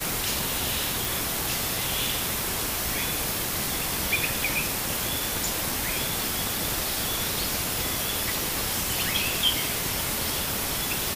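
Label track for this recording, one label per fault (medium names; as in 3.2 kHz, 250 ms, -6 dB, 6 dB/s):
1.050000	1.050000	pop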